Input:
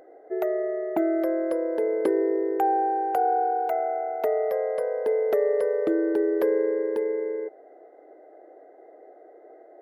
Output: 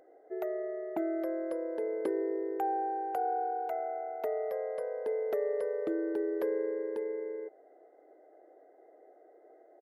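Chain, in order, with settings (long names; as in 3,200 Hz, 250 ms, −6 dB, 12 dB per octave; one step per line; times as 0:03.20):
downsampling to 32,000 Hz
level −9 dB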